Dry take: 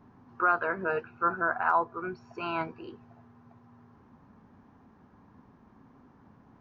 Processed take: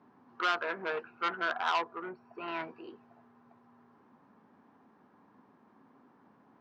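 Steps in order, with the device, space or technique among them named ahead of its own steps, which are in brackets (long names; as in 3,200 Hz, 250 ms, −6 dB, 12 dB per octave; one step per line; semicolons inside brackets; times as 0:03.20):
public-address speaker with an overloaded transformer (saturating transformer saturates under 2,500 Hz; band-pass filter 250–5,000 Hz)
0:02.03–0:02.48: high-frequency loss of the air 290 metres
level −2 dB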